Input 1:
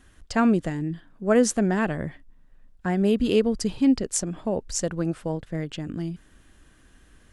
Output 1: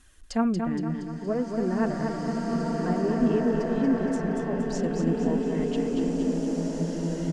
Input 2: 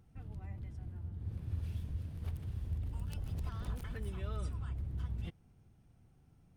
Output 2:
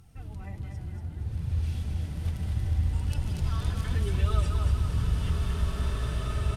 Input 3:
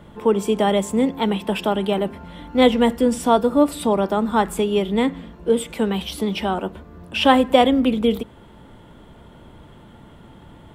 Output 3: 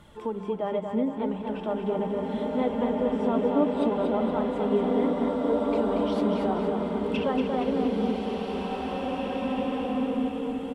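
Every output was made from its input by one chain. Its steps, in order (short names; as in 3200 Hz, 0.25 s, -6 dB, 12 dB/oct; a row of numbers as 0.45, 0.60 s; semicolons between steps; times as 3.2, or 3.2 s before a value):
compressor 6:1, threshold -18 dBFS; treble ducked by the level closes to 1300 Hz, closed at -21.5 dBFS; harmonic-percussive split harmonic +8 dB; high shelf 2800 Hz +10 dB; notches 50/100/150/200 Hz; flange 0.7 Hz, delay 0.7 ms, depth 6.5 ms, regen +43%; feedback echo 0.234 s, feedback 51%, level -5.5 dB; short-mantissa float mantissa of 8-bit; bloom reverb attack 2.37 s, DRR -1.5 dB; normalise peaks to -12 dBFS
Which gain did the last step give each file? -7.0, +6.0, -9.5 dB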